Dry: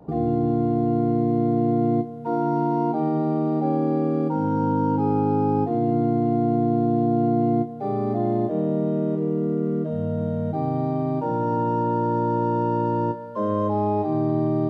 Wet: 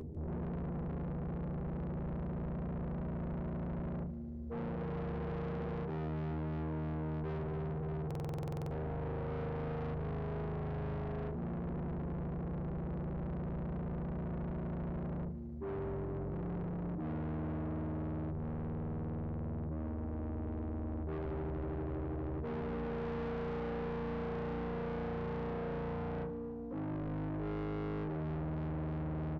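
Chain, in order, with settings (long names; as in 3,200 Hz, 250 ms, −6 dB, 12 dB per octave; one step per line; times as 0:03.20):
high-shelf EQ 2,400 Hz −7 dB
comb filter 6.3 ms, depth 96%
upward compression, threshold −28 dBFS
soft clipping −29.5 dBFS, distortion −5 dB
on a send: feedback echo with a high-pass in the loop 74 ms, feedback 55%, level −18 dB
on the sum: wrong playback speed 15 ips tape played at 7.5 ips
buffer that repeats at 0:08.06, samples 2,048, times 13
level −7.5 dB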